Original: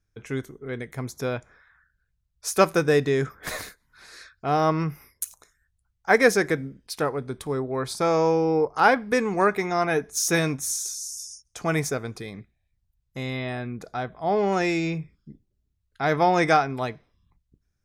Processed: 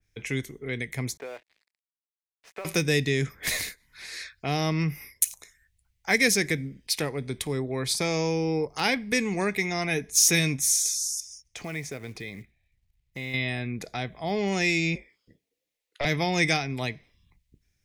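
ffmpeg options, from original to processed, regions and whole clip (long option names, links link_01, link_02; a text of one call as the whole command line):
ffmpeg -i in.wav -filter_complex "[0:a]asettb=1/sr,asplit=3[link_01][link_02][link_03];[link_01]atrim=end=1.174[link_04];[link_02]atrim=start=1.17:end=2.65,asetpts=PTS-STARTPTS,afade=type=in:duration=0.004:curve=qsin,afade=type=out:start_time=1.476:duration=0.004:curve=qsin,asuperpass=centerf=840:order=4:qfactor=0.75,acompressor=threshold=-33dB:ratio=6:attack=3.2:release=140:knee=1:detection=peak,aeval=exprs='sgn(val(0))*max(abs(val(0))-0.00178,0)':channel_layout=same[link_05];[link_03]atrim=start=2.646[link_06];[link_04][link_05]acrossfade=duration=0.004:curve1=hsin:curve2=qsin[link_07];[link_07][link_06]acrossfade=duration=0.004:curve1=qsin:curve2=hsin,asettb=1/sr,asplit=3[link_08][link_09][link_10];[link_08]atrim=end=11.204[link_11];[link_09]atrim=start=11.2:end=13.34,asetpts=PTS-STARTPTS,afade=type=in:duration=0.004:curve=qsin,afade=type=out:start_time=2.136:duration=0.004:curve=qsin,acompressor=threshold=-40dB:ratio=2:attack=3.2:release=140:knee=1:detection=peak,lowpass=frequency=2800:poles=1,acrusher=bits=7:mode=log:mix=0:aa=0.000001[link_12];[link_10]atrim=start=13.336[link_13];[link_11][link_12]acrossfade=duration=0.004:curve1=hsin:curve2=qsin[link_14];[link_14][link_13]acrossfade=duration=0.004:curve1=qsin:curve2=hsin,asettb=1/sr,asplit=3[link_15][link_16][link_17];[link_15]atrim=end=14.954[link_18];[link_16]atrim=start=14.95:end=16.05,asetpts=PTS-STARTPTS,afade=type=in:duration=0.004:curve=qsin,afade=type=out:start_time=1.096:duration=0.004:curve=qsin,highpass=frequency=600:width_type=q:width=5.2,afreqshift=-110,aeval=exprs='(tanh(5.01*val(0)+0.45)-tanh(0.45))/5.01':channel_layout=same[link_19];[link_17]atrim=start=16.046[link_20];[link_18][link_19]acrossfade=duration=0.004:curve1=hsin:curve2=qsin[link_21];[link_21][link_20]acrossfade=duration=0.004:curve1=qsin:curve2=hsin,highshelf=frequency=1700:width_type=q:width=3:gain=6,acrossover=split=270|3000[link_22][link_23][link_24];[link_23]acompressor=threshold=-37dB:ratio=2[link_25];[link_22][link_25][link_24]amix=inputs=3:normalize=0,adynamicequalizer=threshold=0.01:dfrequency=2500:dqfactor=0.7:tfrequency=2500:tqfactor=0.7:attack=5:release=100:ratio=0.375:range=1.5:mode=cutabove:tftype=highshelf,volume=1.5dB" out.wav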